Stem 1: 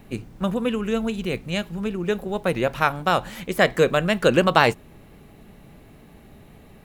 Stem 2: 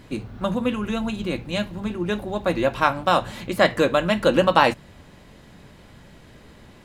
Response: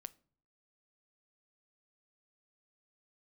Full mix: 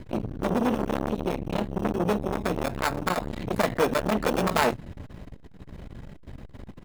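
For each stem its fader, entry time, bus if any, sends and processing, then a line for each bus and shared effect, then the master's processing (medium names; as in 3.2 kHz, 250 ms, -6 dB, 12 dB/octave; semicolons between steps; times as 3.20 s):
-6.5 dB, 0.00 s, send -13.5 dB, sample-and-hold 15×
+2.0 dB, 1.4 ms, send -12.5 dB, tilt EQ -2.5 dB/octave; peak limiter -10.5 dBFS, peak gain reduction 8.5 dB; compression, threshold -21 dBFS, peak gain reduction 6 dB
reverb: on, pre-delay 7 ms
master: hum notches 50/100/150 Hz; transformer saturation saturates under 1.2 kHz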